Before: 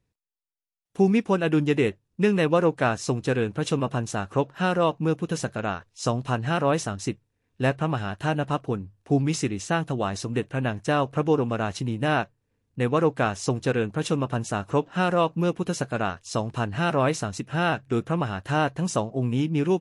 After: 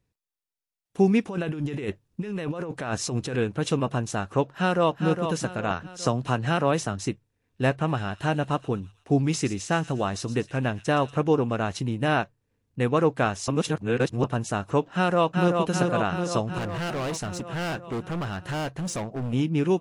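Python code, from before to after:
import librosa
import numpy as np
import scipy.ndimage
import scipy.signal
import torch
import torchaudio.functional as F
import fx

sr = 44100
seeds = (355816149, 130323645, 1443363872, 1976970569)

y = fx.over_compress(x, sr, threshold_db=-28.0, ratio=-1.0, at=(1.22, 3.36), fade=0.02)
y = fx.echo_throw(y, sr, start_s=4.48, length_s=0.56, ms=410, feedback_pct=35, wet_db=-7.0)
y = fx.band_squash(y, sr, depth_pct=40, at=(5.7, 7.06))
y = fx.echo_wet_highpass(y, sr, ms=118, feedback_pct=55, hz=3300.0, wet_db=-11.5, at=(7.86, 11.17), fade=0.02)
y = fx.echo_throw(y, sr, start_s=14.95, length_s=0.69, ms=380, feedback_pct=70, wet_db=-4.0)
y = fx.clip_hard(y, sr, threshold_db=-27.0, at=(16.58, 19.33))
y = fx.edit(y, sr, fx.reverse_span(start_s=13.48, length_s=0.76), tone=tone)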